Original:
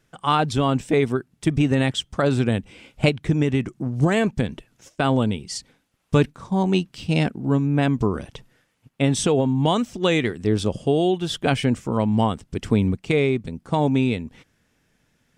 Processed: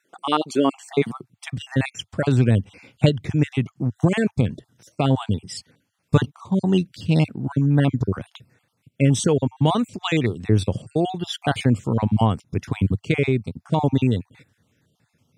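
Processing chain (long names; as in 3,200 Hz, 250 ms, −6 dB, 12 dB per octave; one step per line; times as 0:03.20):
time-frequency cells dropped at random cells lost 38%
high-pass filter sweep 340 Hz → 100 Hz, 0:00.59–0:01.37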